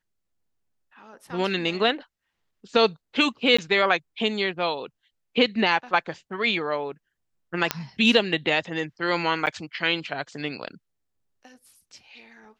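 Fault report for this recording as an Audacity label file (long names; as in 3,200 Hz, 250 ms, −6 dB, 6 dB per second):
3.570000	3.580000	drop-out 15 ms
7.710000	7.710000	click −5 dBFS
9.460000	9.470000	drop-out 9.3 ms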